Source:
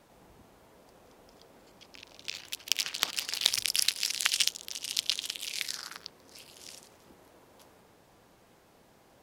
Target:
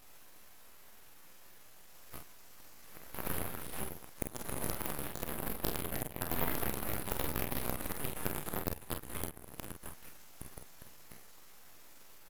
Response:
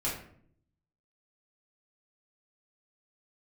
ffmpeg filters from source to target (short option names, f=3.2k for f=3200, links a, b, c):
-af "areverse,lowpass=f=6.5k:w=0.5412,lowpass=f=6.5k:w=1.3066,afftfilt=real='re*lt(hypot(re,im),0.0501)':imag='im*lt(hypot(re,im),0.0501)':win_size=1024:overlap=0.75,highpass=f=1.2k:p=1,equalizer=f=1.7k:w=6:g=6.5,acompressor=threshold=-49dB:ratio=8,atempo=0.75,aeval=exprs='0.0158*(abs(mod(val(0)/0.0158+3,4)-2)-1)':c=same,aexciter=amount=13.4:drive=5.7:freq=4.9k,aeval=exprs='abs(val(0))':c=same,aecho=1:1:34|47:0.299|0.447"